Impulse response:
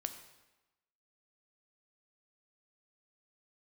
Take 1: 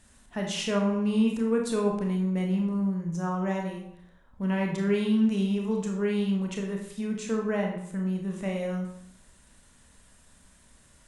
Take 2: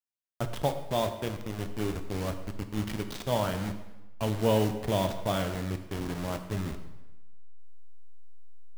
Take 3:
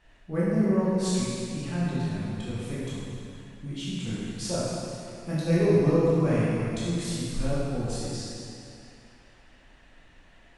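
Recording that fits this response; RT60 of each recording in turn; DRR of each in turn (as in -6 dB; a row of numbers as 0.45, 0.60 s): 2; 0.70, 1.1, 2.7 s; 1.0, 7.5, -8.5 dB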